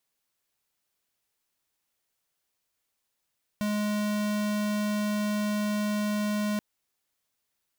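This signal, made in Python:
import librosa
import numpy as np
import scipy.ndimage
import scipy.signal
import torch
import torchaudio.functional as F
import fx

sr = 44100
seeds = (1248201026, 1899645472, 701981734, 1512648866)

y = fx.tone(sr, length_s=2.98, wave='square', hz=209.0, level_db=-28.0)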